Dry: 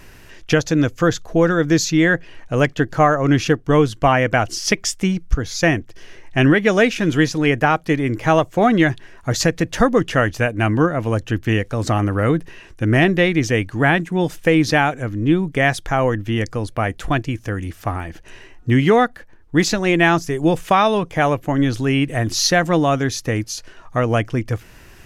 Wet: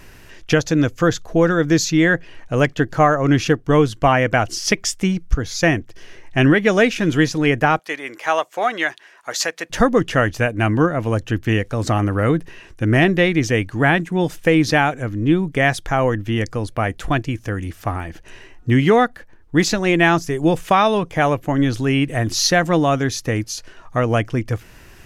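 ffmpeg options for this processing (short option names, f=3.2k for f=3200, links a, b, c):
-filter_complex "[0:a]asettb=1/sr,asplit=3[a][b][c];[a]atrim=end=7.794[d];[b]atrim=start=7.79:end=9.7,asetpts=PTS-STARTPTS,afade=t=in:d=0.004:c=qsin,afade=t=out:st=1.906:d=0.004:c=qsin,highpass=710[e];[c]atrim=start=9.696[f];[d][e]acrossfade=d=0.004:c1=hsin:c2=qsin[g];[g][f]acrossfade=d=0.004:c1=qsin:c2=hsin"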